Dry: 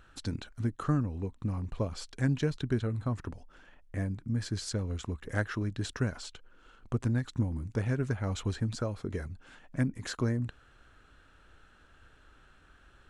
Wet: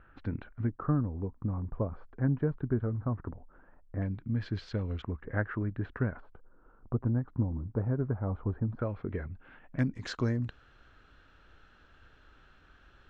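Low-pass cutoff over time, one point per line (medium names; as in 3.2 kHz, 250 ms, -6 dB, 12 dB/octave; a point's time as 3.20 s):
low-pass 24 dB/octave
2.2 kHz
from 0.69 s 1.4 kHz
from 4.02 s 3.4 kHz
from 5.02 s 1.9 kHz
from 6.20 s 1.2 kHz
from 8.79 s 2.5 kHz
from 9.79 s 5.7 kHz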